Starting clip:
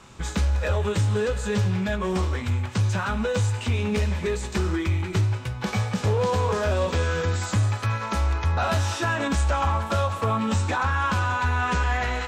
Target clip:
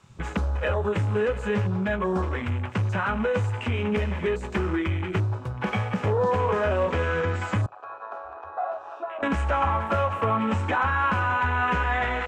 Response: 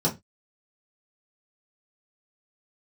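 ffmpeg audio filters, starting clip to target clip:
-filter_complex "[0:a]asettb=1/sr,asplit=3[a][b][c];[a]atrim=end=7.664[d];[b]atrim=start=7.66:end=9.23,asetpts=PTS-STARTPTS,afade=t=in:d=0.004:c=qsin,afade=t=out:st=1.566:d=0.004:c=qsin,asplit=3[e][f][g];[e]bandpass=f=730:t=q:w=8,volume=0dB[h];[f]bandpass=f=1.09k:t=q:w=8,volume=-6dB[i];[g]bandpass=f=2.44k:t=q:w=8,volume=-9dB[j];[h][i][j]amix=inputs=3:normalize=0[k];[c]atrim=start=9.226[l];[d][k]acrossfade=d=0.004:c1=hsin:c2=qsin[m];[m][l]acrossfade=d=0.004:c1=qsin:c2=hsin,lowshelf=f=140:g=-8,asplit=2[n][o];[o]acompressor=threshold=-38dB:ratio=6,volume=1dB[p];[n][p]amix=inputs=2:normalize=0,afwtdn=0.02"

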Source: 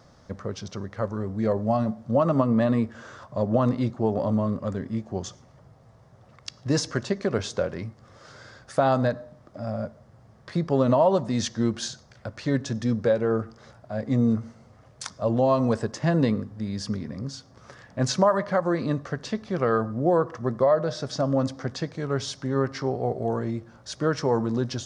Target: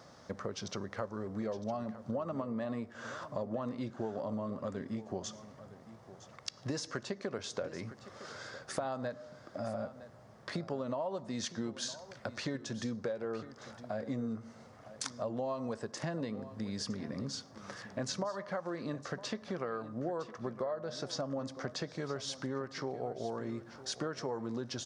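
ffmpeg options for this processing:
-af "highpass=f=260:p=1,acompressor=threshold=-36dB:ratio=6,aecho=1:1:960:0.178,volume=1dB"

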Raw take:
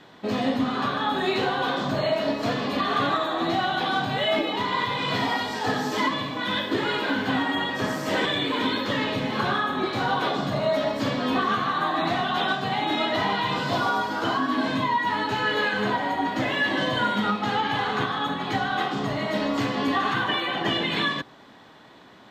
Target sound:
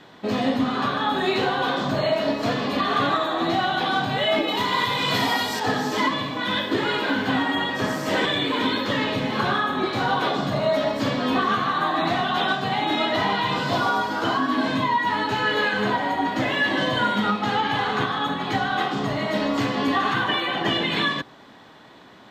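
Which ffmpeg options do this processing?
-filter_complex "[0:a]asettb=1/sr,asplit=3[a][b][c];[a]atrim=end=4.484[d];[b]atrim=start=4.48:end=5.6,asetpts=PTS-STARTPTS,afade=t=in:d=0.004:c=qsin,afade=t=out:st=1.116:d=0.004:c=qsin,aemphasis=mode=production:type=50kf[e];[c]atrim=start=5.596[f];[d][e]acrossfade=d=0.004:c1=hsin:c2=qsin[g];[g][f]acrossfade=d=0.004:c1=qsin:c2=hsin,volume=2dB"

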